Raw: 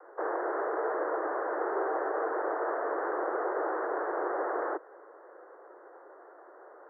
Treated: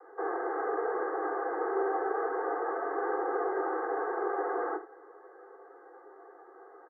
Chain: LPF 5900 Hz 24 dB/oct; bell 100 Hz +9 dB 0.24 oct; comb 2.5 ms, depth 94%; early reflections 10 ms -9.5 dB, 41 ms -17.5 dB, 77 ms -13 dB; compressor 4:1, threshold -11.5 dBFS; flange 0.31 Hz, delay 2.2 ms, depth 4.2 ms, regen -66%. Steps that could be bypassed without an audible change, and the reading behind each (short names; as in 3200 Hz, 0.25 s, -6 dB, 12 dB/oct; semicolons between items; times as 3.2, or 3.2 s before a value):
LPF 5900 Hz: input band ends at 2000 Hz; bell 100 Hz: input band starts at 250 Hz; compressor, threshold -11.5 dBFS: input peak -14.5 dBFS